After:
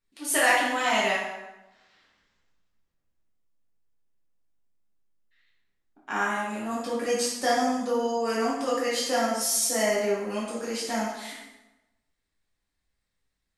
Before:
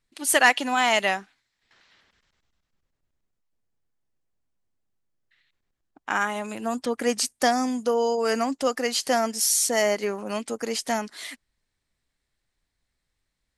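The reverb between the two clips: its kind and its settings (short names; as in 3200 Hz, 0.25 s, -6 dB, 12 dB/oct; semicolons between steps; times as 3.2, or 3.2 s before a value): plate-style reverb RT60 1 s, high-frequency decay 0.75×, DRR -7.5 dB; gain -10 dB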